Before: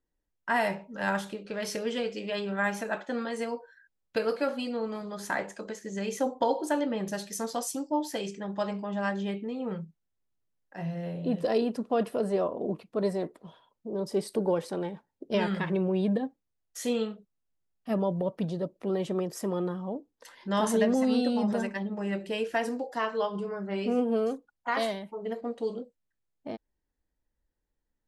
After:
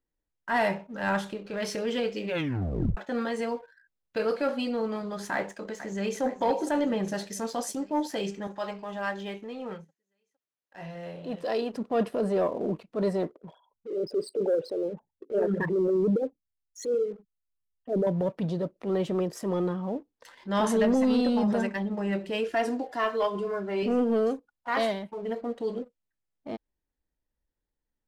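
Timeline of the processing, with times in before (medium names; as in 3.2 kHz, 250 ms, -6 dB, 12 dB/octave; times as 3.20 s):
2.25 s: tape stop 0.72 s
5.33–6.22 s: echo throw 460 ms, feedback 70%, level -13.5 dB
8.47–11.74 s: high-pass 620 Hz 6 dB/octave
13.33–18.07 s: resonances exaggerated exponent 3
22.48–23.83 s: comb 2.9 ms, depth 51%
whole clip: treble shelf 7.6 kHz -9.5 dB; transient shaper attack -6 dB, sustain -1 dB; waveshaping leveller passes 1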